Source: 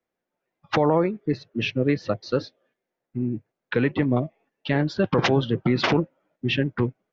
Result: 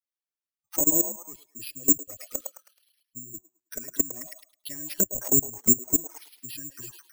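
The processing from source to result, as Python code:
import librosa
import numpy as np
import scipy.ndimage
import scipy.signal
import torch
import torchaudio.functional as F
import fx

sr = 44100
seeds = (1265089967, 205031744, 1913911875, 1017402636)

y = fx.bin_expand(x, sr, power=1.5)
y = fx.level_steps(y, sr, step_db=21)
y = fx.low_shelf(y, sr, hz=61.0, db=5.5)
y = y + 0.56 * np.pad(y, (int(3.2 * sr / 1000.0), 0))[:len(y)]
y = fx.env_flanger(y, sr, rest_ms=9.9, full_db=-20.0)
y = fx.high_shelf(y, sr, hz=4900.0, db=6.5)
y = fx.echo_stepped(y, sr, ms=107, hz=810.0, octaves=0.7, feedback_pct=70, wet_db=-1.0)
y = fx.env_lowpass_down(y, sr, base_hz=380.0, full_db=-25.5)
y = (np.kron(y[::6], np.eye(6)[0]) * 6)[:len(y)]
y = F.gain(torch.from_numpy(y), -2.0).numpy()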